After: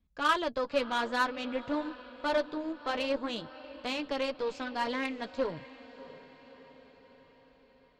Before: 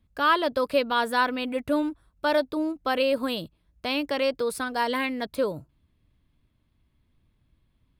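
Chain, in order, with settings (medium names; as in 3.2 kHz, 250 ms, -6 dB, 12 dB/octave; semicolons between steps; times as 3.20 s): resampled via 16 kHz; flange 0.52 Hz, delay 4 ms, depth 9.9 ms, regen -30%; echo that smears into a reverb 645 ms, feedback 56%, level -15.5 dB; Chebyshev shaper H 3 -18 dB, 8 -29 dB, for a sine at -13 dBFS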